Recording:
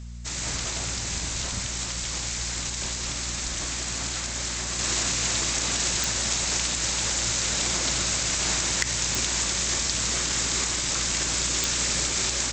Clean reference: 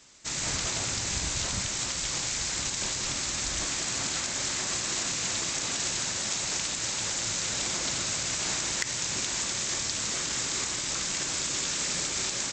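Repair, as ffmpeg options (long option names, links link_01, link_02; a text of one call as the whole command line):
ffmpeg -i in.wav -af "adeclick=threshold=4,bandreject=frequency=59.1:width_type=h:width=4,bandreject=frequency=118.2:width_type=h:width=4,bandreject=frequency=177.3:width_type=h:width=4,bandreject=frequency=236.4:width_type=h:width=4,asetnsamples=nb_out_samples=441:pad=0,asendcmd='4.79 volume volume -4.5dB',volume=0dB" out.wav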